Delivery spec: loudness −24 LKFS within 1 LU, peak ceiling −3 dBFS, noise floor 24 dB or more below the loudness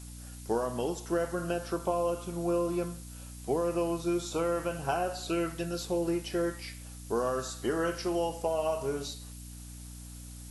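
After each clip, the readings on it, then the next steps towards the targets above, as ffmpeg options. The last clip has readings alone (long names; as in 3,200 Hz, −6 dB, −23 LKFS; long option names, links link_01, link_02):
mains hum 60 Hz; hum harmonics up to 300 Hz; level of the hum −43 dBFS; background noise floor −45 dBFS; target noise floor −56 dBFS; integrated loudness −32.0 LKFS; sample peak −16.5 dBFS; target loudness −24.0 LKFS
→ -af "bandreject=frequency=60:width_type=h:width=4,bandreject=frequency=120:width_type=h:width=4,bandreject=frequency=180:width_type=h:width=4,bandreject=frequency=240:width_type=h:width=4,bandreject=frequency=300:width_type=h:width=4"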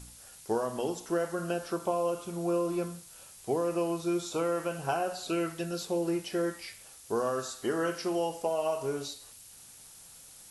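mains hum none found; background noise floor −52 dBFS; target noise floor −56 dBFS
→ -af "afftdn=noise_reduction=6:noise_floor=-52"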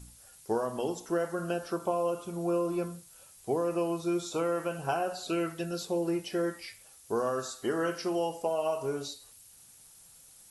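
background noise floor −56 dBFS; integrated loudness −32.0 LKFS; sample peak −17.0 dBFS; target loudness −24.0 LKFS
→ -af "volume=8dB"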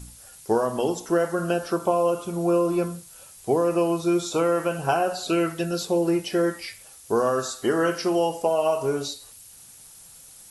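integrated loudness −24.0 LKFS; sample peak −9.0 dBFS; background noise floor −48 dBFS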